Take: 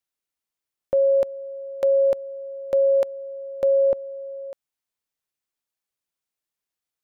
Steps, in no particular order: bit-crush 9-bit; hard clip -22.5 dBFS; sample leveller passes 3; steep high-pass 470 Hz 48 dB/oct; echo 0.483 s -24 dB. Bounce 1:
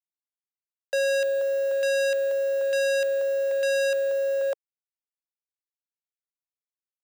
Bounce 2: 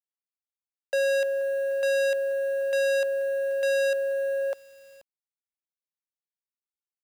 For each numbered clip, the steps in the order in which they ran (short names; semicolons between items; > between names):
echo > bit-crush > sample leveller > hard clip > steep high-pass; hard clip > echo > sample leveller > steep high-pass > bit-crush